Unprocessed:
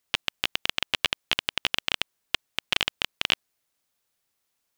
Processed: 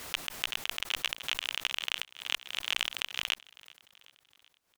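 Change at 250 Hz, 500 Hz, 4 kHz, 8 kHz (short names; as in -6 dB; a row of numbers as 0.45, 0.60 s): -11.5, -9.5, -5.5, -1.0 dB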